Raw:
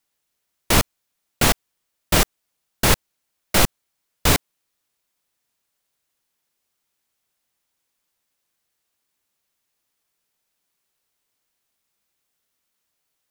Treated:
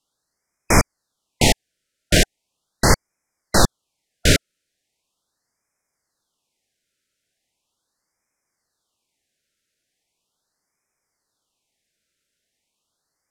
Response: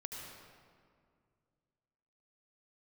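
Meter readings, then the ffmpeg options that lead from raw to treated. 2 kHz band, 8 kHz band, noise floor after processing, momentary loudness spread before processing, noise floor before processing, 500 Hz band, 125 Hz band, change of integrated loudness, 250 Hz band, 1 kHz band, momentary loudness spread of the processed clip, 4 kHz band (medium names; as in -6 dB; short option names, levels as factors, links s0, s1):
+1.5 dB, +1.0 dB, -79 dBFS, 4 LU, -77 dBFS, +3.0 dB, +3.0 dB, +1.0 dB, +3.0 dB, +1.0 dB, 4 LU, +1.0 dB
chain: -af "lowpass=8900,afftfilt=real='re*(1-between(b*sr/1024,900*pow(3600/900,0.5+0.5*sin(2*PI*0.39*pts/sr))/1.41,900*pow(3600/900,0.5+0.5*sin(2*PI*0.39*pts/sr))*1.41))':imag='im*(1-between(b*sr/1024,900*pow(3600/900,0.5+0.5*sin(2*PI*0.39*pts/sr))/1.41,900*pow(3600/900,0.5+0.5*sin(2*PI*0.39*pts/sr))*1.41))':win_size=1024:overlap=0.75,volume=1.41"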